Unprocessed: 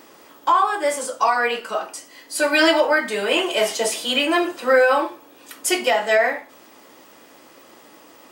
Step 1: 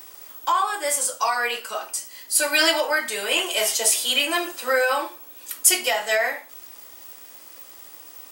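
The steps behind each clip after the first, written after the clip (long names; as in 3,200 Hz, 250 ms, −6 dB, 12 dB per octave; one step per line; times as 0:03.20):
RIAA equalisation recording
level −4.5 dB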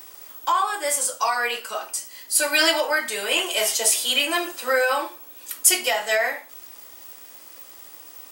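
no processing that can be heard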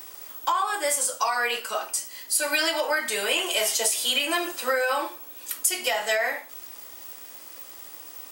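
downward compressor 12 to 1, threshold −21 dBFS, peak gain reduction 11.5 dB
level +1 dB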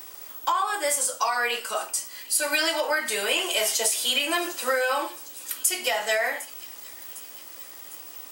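delay with a high-pass on its return 755 ms, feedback 62%, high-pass 3,700 Hz, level −16 dB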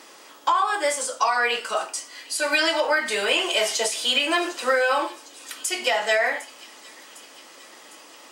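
high-frequency loss of the air 70 metres
level +4 dB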